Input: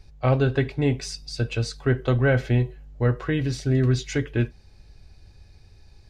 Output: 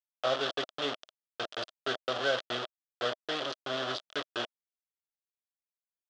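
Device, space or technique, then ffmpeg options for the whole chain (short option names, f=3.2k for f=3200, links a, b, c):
hand-held game console: -af "acrusher=bits=3:mix=0:aa=0.000001,highpass=490,equalizer=f=630:t=q:w=4:g=8,equalizer=f=910:t=q:w=4:g=-6,equalizer=f=1.3k:t=q:w=4:g=6,equalizer=f=2.2k:t=q:w=4:g=-8,equalizer=f=3.3k:t=q:w=4:g=10,lowpass=f=5.1k:w=0.5412,lowpass=f=5.1k:w=1.3066,volume=-8dB"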